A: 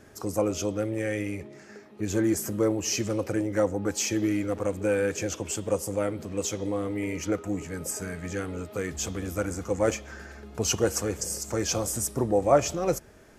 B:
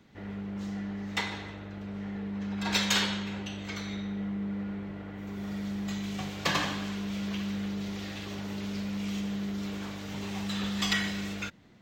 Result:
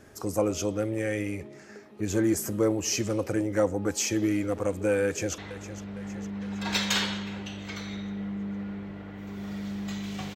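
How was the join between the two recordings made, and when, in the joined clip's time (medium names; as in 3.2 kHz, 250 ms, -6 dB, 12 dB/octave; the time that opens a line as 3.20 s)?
A
5.04–5.38 s: echo throw 460 ms, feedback 60%, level -13 dB
5.38 s: go over to B from 1.38 s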